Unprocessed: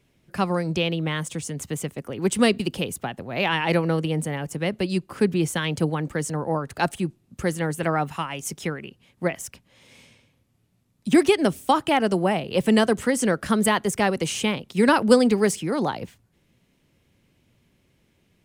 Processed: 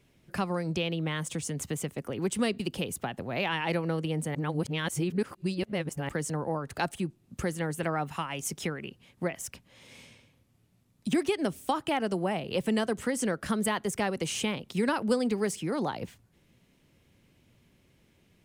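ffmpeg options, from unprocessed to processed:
ffmpeg -i in.wav -filter_complex "[0:a]asplit=3[link_01][link_02][link_03];[link_01]atrim=end=4.352[link_04];[link_02]atrim=start=4.348:end=6.092,asetpts=PTS-STARTPTS,areverse[link_05];[link_03]atrim=start=6.088[link_06];[link_04][link_05]acrossfade=duration=0.004:curve1=hsin:curve2=hsin[link_07];[link_07][link_06]acrossfade=duration=0.004:curve1=hsin:curve2=hsin,acompressor=threshold=-32dB:ratio=2" out.wav

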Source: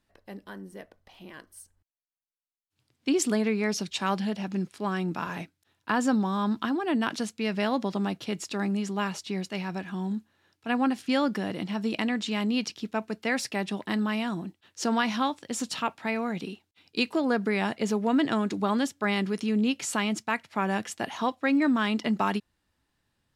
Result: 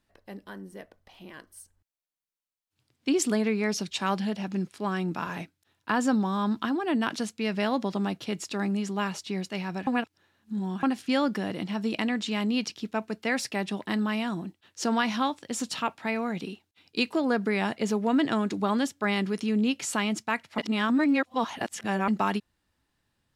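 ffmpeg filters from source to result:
ffmpeg -i in.wav -filter_complex "[0:a]asplit=5[link_01][link_02][link_03][link_04][link_05];[link_01]atrim=end=9.872[link_06];[link_02]atrim=start=9.868:end=10.832,asetpts=PTS-STARTPTS,areverse[link_07];[link_03]atrim=start=10.828:end=20.582[link_08];[link_04]atrim=start=20.578:end=22.082,asetpts=PTS-STARTPTS,areverse[link_09];[link_05]atrim=start=22.078[link_10];[link_06][link_07]acrossfade=duration=0.004:curve1=hsin:curve2=hsin[link_11];[link_11][link_08]acrossfade=duration=0.004:curve1=hsin:curve2=hsin[link_12];[link_12][link_09]acrossfade=duration=0.004:curve1=hsin:curve2=hsin[link_13];[link_13][link_10]acrossfade=duration=0.004:curve1=hsin:curve2=hsin" out.wav

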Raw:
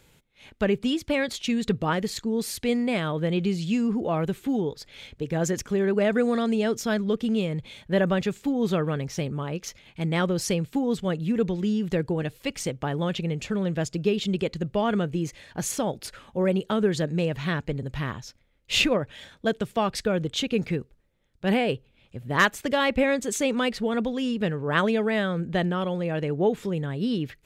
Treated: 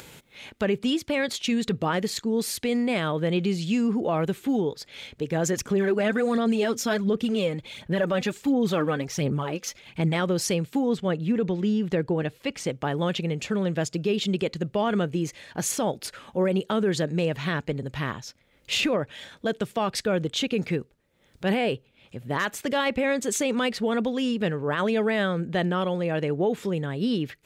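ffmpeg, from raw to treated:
ffmpeg -i in.wav -filter_complex "[0:a]asplit=3[link_01][link_02][link_03];[link_01]afade=type=out:start_time=5.54:duration=0.02[link_04];[link_02]aphaser=in_gain=1:out_gain=1:delay=4:decay=0.52:speed=1.4:type=sinusoidal,afade=type=in:start_time=5.54:duration=0.02,afade=type=out:start_time=10.14:duration=0.02[link_05];[link_03]afade=type=in:start_time=10.14:duration=0.02[link_06];[link_04][link_05][link_06]amix=inputs=3:normalize=0,asettb=1/sr,asplit=3[link_07][link_08][link_09];[link_07]atrim=end=10.894[link_10];[link_08]atrim=start=10.89:end=12.7,asetpts=PTS-STARTPTS,afade=type=in:duration=0.004:curve=qsin,afade=type=out:start_time=1.806:duration=0.004:curve=qsin,aemphasis=mode=reproduction:type=cd[link_11];[link_09]atrim=start=12.696[link_12];[link_10][link_11]acrossfade=duration=0.004:curve1=hsin:curve2=qsin[link_13];[link_13][link_12]acrossfade=duration=0.004:curve1=qsin:curve2=hsin,highpass=frequency=160:poles=1,alimiter=limit=-18.5dB:level=0:latency=1:release=25,acompressor=mode=upward:threshold=-39dB:ratio=2.5,volume=2.5dB" out.wav

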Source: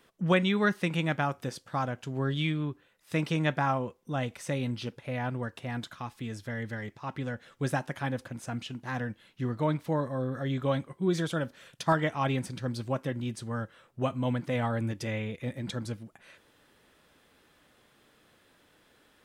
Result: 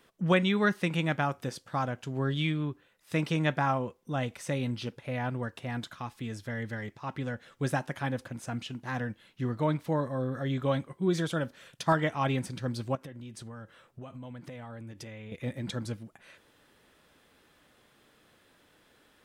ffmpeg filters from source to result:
ffmpeg -i in.wav -filter_complex "[0:a]asettb=1/sr,asplit=3[link_01][link_02][link_03];[link_01]atrim=end=12.954[link_04];[link_02]atrim=start=12.95:end=15.32,asetpts=PTS-STARTPTS,afade=type=in:duration=0.004:curve=qsin,afade=type=out:start_time=2.366:duration=0.004:curve=qsin,acompressor=threshold=-40dB:ratio=10:attack=3.2:release=140:knee=1:detection=peak[link_05];[link_03]atrim=start=15.316[link_06];[link_04][link_05]acrossfade=duration=0.004:curve1=hsin:curve2=qsin[link_07];[link_07][link_06]acrossfade=duration=0.004:curve1=qsin:curve2=hsin" out.wav

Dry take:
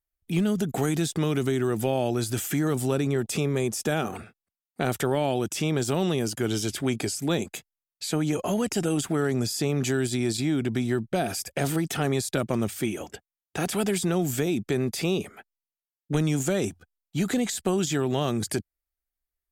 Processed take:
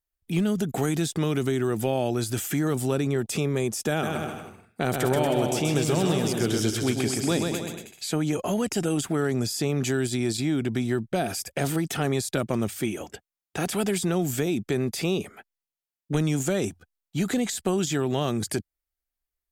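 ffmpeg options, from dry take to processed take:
ffmpeg -i in.wav -filter_complex "[0:a]asettb=1/sr,asplit=3[link_01][link_02][link_03];[link_01]atrim=end=3.904[link_04];[link_02]atrim=start=3.9:end=8.12,asetpts=PTS-STARTPTS,afade=type=in:duration=0.004:curve=qsin,afade=type=out:start_time=4.216:duration=0.004:curve=qsin,aecho=1:1:130|234|317.2|383.8|437|479.6:0.631|0.398|0.251|0.158|0.1|0.0631,atrim=end_sample=186102[link_05];[link_03]atrim=start=8.116[link_06];[link_04][link_05]acrossfade=duration=0.004:curve1=hsin:curve2=qsin[link_07];[link_07][link_06]acrossfade=duration=0.004:curve1=qsin:curve2=hsin" out.wav

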